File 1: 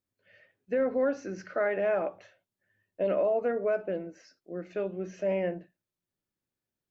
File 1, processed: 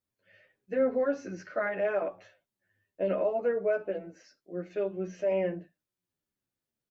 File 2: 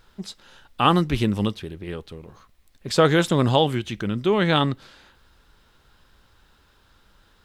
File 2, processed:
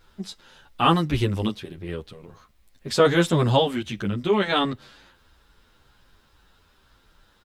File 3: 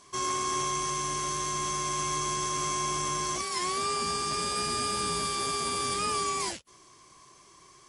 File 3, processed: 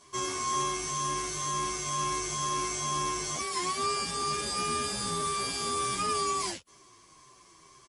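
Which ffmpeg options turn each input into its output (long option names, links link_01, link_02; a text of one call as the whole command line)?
ffmpeg -i in.wav -filter_complex "[0:a]asplit=2[link_01][link_02];[link_02]adelay=9.6,afreqshift=-2.1[link_03];[link_01][link_03]amix=inputs=2:normalize=1,volume=2dB" out.wav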